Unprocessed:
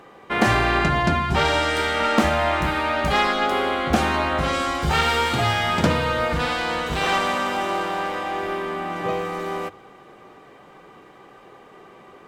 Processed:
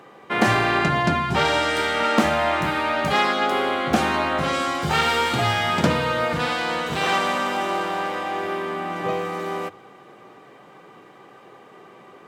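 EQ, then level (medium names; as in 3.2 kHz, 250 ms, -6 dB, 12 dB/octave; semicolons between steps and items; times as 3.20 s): high-pass 96 Hz 24 dB/octave; 0.0 dB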